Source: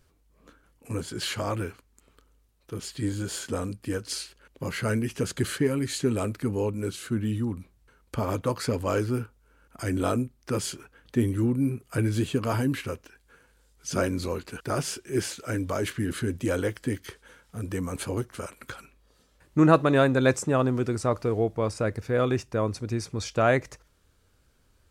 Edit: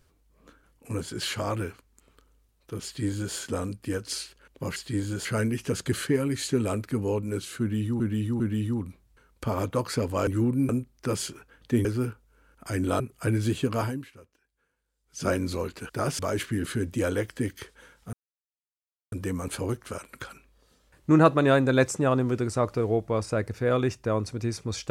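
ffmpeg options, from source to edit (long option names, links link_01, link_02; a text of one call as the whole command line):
ffmpeg -i in.wav -filter_complex "[0:a]asplit=13[link_01][link_02][link_03][link_04][link_05][link_06][link_07][link_08][link_09][link_10][link_11][link_12][link_13];[link_01]atrim=end=4.762[link_14];[link_02]atrim=start=2.848:end=3.342[link_15];[link_03]atrim=start=4.758:end=7.512[link_16];[link_04]atrim=start=7.108:end=7.512[link_17];[link_05]atrim=start=7.108:end=8.982[link_18];[link_06]atrim=start=11.288:end=11.712[link_19];[link_07]atrim=start=10.128:end=11.292[link_20];[link_08]atrim=start=8.978:end=10.132[link_21];[link_09]atrim=start=11.708:end=12.86,asetpts=PTS-STARTPTS,afade=type=out:start_time=0.802:duration=0.35:curve=qua:silence=0.125893[link_22];[link_10]atrim=start=12.86:end=13.64,asetpts=PTS-STARTPTS,volume=-18dB[link_23];[link_11]atrim=start=13.64:end=14.902,asetpts=PTS-STARTPTS,afade=type=in:duration=0.35:curve=qua:silence=0.125893[link_24];[link_12]atrim=start=15.658:end=17.6,asetpts=PTS-STARTPTS,afade=type=out:start_time=1.938:duration=0.004:curve=hsin,apad=pad_dur=0.99[link_25];[link_13]atrim=start=17.6,asetpts=PTS-STARTPTS,afade=type=in:duration=0.004:curve=hsin[link_26];[link_14][link_15]acrossfade=duration=0.004:curve1=hsin:curve2=hsin[link_27];[link_27][link_16]acrossfade=duration=0.004:curve1=hsin:curve2=hsin[link_28];[link_28][link_17]acrossfade=duration=0.004:curve1=hsin:curve2=hsin[link_29];[link_29][link_18]acrossfade=duration=0.004:curve1=hsin:curve2=hsin[link_30];[link_30][link_19]acrossfade=duration=0.004:curve1=hsin:curve2=hsin[link_31];[link_31][link_20]acrossfade=duration=0.004:curve1=hsin:curve2=hsin[link_32];[link_32][link_21]acrossfade=duration=0.004:curve1=hsin:curve2=hsin[link_33];[link_22][link_23][link_24]concat=n=3:v=0:a=1[link_34];[link_33][link_34]acrossfade=duration=0.004:curve1=hsin:curve2=hsin[link_35];[link_25][link_26]concat=n=2:v=0:a=1[link_36];[link_35][link_36]acrossfade=duration=0.004:curve1=hsin:curve2=hsin" out.wav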